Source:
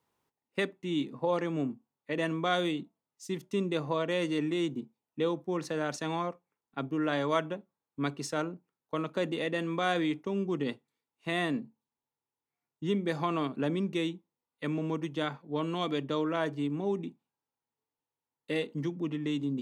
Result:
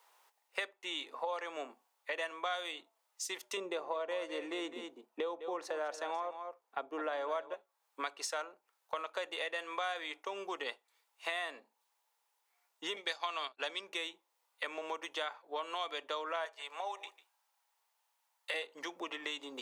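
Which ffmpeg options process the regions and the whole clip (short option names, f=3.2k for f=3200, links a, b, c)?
-filter_complex "[0:a]asettb=1/sr,asplit=3[a][b][c];[a]atrim=end=3.574[d];[b]atrim=start=3.57:end=7.54,asetpts=PTS-STARTPTS,afade=t=in:d=0.004:c=qsin,afade=t=out:st=3.966:d=0.004:c=qsin,tiltshelf=f=920:g=8,aecho=1:1:205:0.224,atrim=end_sample=175077[e];[c]atrim=start=7.536[f];[d][e]acrossfade=d=0.004:c1=hsin:c2=qsin[g];[g][f]acrossfade=d=0.004:c1=qsin:c2=hsin,asettb=1/sr,asplit=3[h][i][j];[h]atrim=end=12.964[k];[i]atrim=start=12.96:end=13.81,asetpts=PTS-STARTPTS,afade=t=in:d=0.004:c=qsin,afade=t=out:st=0.846:d=0.004:c=qsin,agate=range=-33dB:threshold=-30dB:ratio=3:release=100:detection=peak,equalizer=f=4.4k:w=0.64:g=12.5[l];[j]atrim=start=13.806[m];[k][l]acrossfade=d=0.004:c1=hsin:c2=qsin[n];[n][m]acrossfade=d=0.004:c1=qsin:c2=hsin,asettb=1/sr,asplit=3[o][p][q];[o]atrim=end=16.454[r];[p]atrim=start=16.45:end=18.54,asetpts=PTS-STARTPTS,afade=t=in:d=0.004:c=qsin,afade=t=out:st=2.086:d=0.004:c=qsin,highpass=f=560:w=0.5412,highpass=f=560:w=1.3066,aecho=1:1:147:0.0944,atrim=end_sample=92169[s];[q]atrim=start=18.536[t];[r][s]acrossfade=d=0.004:c1=hsin:c2=qsin[u];[u][t]acrossfade=d=0.004:c1=qsin:c2=hsin,highpass=f=610:w=0.5412,highpass=f=610:w=1.3066,acompressor=threshold=-52dB:ratio=4,volume=13.5dB"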